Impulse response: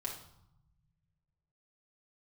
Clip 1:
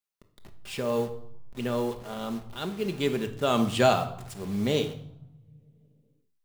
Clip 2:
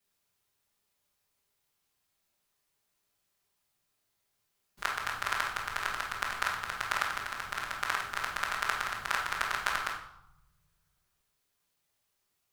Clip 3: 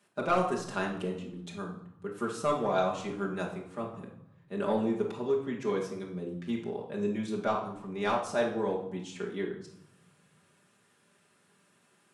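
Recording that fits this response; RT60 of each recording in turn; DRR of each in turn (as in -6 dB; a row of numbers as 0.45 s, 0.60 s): 3; no single decay rate, 0.75 s, 0.75 s; 5.5 dB, -9.5 dB, -3.0 dB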